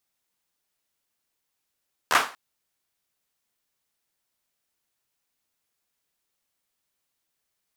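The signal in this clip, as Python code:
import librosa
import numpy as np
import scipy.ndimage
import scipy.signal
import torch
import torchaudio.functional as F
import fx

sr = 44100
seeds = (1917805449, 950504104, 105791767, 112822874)

y = fx.drum_clap(sr, seeds[0], length_s=0.24, bursts=4, spacing_ms=13, hz=1100.0, decay_s=0.35)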